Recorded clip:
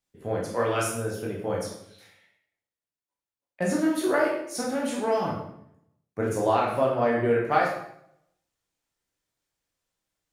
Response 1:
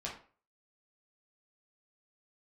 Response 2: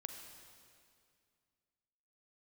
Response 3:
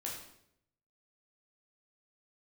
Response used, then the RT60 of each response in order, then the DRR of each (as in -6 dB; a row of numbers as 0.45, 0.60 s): 3; 0.40, 2.2, 0.75 s; -4.0, 4.5, -3.5 dB